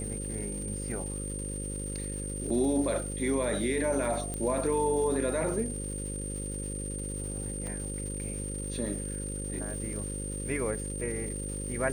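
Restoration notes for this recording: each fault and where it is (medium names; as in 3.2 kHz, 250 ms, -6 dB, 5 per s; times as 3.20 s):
buzz 50 Hz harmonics 11 -37 dBFS
crackle 510 per s -41 dBFS
whine 8.8 kHz -38 dBFS
2.50 s: dropout 4.1 ms
4.34 s: pop -21 dBFS
7.67 s: pop -25 dBFS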